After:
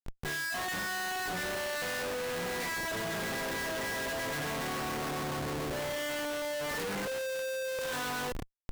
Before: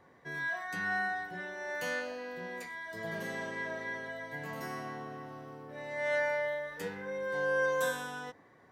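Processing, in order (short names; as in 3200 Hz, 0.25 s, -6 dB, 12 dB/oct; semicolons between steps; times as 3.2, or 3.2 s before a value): 7.07–7.79 HPF 380 Hz 24 dB/oct; limiter -31.5 dBFS, peak gain reduction 11.5 dB; thin delay 98 ms, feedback 58%, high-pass 1600 Hz, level -21 dB; Schmitt trigger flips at -52 dBFS; gain +6 dB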